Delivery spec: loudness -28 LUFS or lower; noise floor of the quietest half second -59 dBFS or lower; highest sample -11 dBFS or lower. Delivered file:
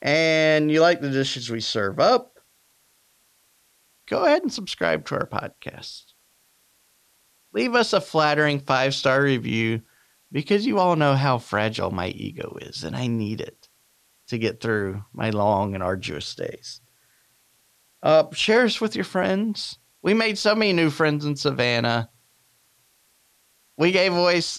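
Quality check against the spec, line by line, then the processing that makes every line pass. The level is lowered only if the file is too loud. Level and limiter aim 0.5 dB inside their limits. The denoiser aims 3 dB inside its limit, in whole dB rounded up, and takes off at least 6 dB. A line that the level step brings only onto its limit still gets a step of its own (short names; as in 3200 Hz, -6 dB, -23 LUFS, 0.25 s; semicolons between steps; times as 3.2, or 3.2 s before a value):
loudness -22.0 LUFS: fail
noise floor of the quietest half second -63 dBFS: OK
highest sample -6.0 dBFS: fail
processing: gain -6.5 dB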